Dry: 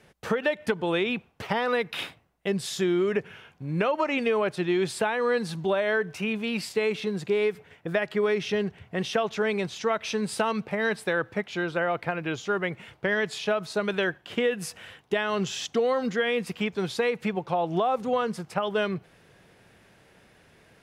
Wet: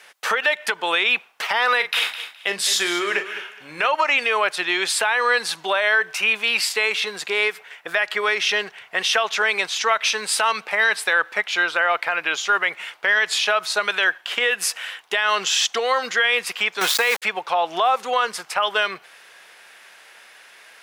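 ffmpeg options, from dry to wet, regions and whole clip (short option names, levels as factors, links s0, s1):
-filter_complex "[0:a]asettb=1/sr,asplit=3[s0][s1][s2];[s0]atrim=end=1.764[s3];[s1]atrim=start=1.76:end=3.86,asetpts=PTS-STARTPTS,afade=t=in:d=0.004:c=qsin,afade=t=out:st=2.096:d=0.004:c=qsin,asplit=2[s4][s5];[s5]adelay=40,volume=0.299[s6];[s4][s6]amix=inputs=2:normalize=0,atrim=end_sample=92610,aecho=1:1:209|418:0.224|0.047,atrim=end_sample=92610[s7];[s2]atrim=start=3.856[s8];[s3][s7]acrossfade=d=0.004:c1=hsin:c2=qsin[s9];[s9][s8]acrossfade=d=0.004:c1=qsin:c2=hsin,asettb=1/sr,asplit=3[s10][s11][s12];[s10]atrim=end=16.814[s13];[s11]atrim=start=16.81:end=17.22,asetpts=PTS-STARTPTS,afade=t=in:d=0.004:c=qsin,afade=t=out:st=0.406:d=0.004:c=qsin,acontrast=76,aeval=exprs='val(0)*gte(abs(val(0)),0.0376)':c=same[s14];[s12]atrim=start=17.216[s15];[s13][s14]acrossfade=d=0.004:c1=hsin:c2=qsin[s16];[s16][s15]acrossfade=d=0.004:c1=qsin:c2=hsin,highpass=1100,acontrast=64,alimiter=level_in=6.31:limit=0.891:release=50:level=0:latency=1,volume=0.398"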